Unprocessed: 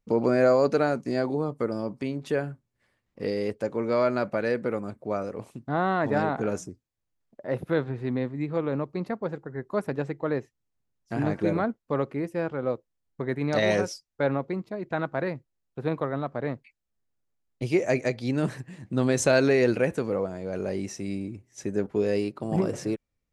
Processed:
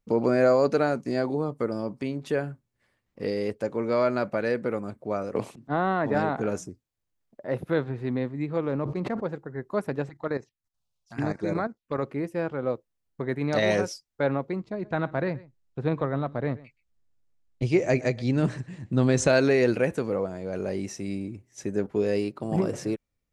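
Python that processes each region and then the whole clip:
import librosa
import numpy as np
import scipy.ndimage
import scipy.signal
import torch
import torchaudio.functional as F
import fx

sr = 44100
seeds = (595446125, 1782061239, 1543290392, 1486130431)

y = fx.chain(x, sr, fx.high_shelf(hz=5900.0, db=-9.5),
    fx.auto_swell(attack_ms=234.0),
    fx.band_squash(depth_pct=100), at=(5.35, 6.15))
y = fx.chain(y, sr, fx.median_filter(points=9),
    fx.air_absorb(metres=78.0),
    fx.sustainer(db_per_s=31.0), at=(8.62, 9.25))
y = fx.chain(y, sr, fx.peak_eq(hz=3500.0, db=11.5, octaves=2.4),
    fx.level_steps(step_db=13),
    fx.env_phaser(low_hz=280.0, high_hz=3100.0, full_db=-26.5), at=(10.09, 12.04))
y = fx.chain(y, sr, fx.lowpass(hz=8400.0, slope=24),
    fx.low_shelf(hz=120.0, db=10.0),
    fx.echo_single(ms=124, db=-20.5), at=(14.62, 19.28))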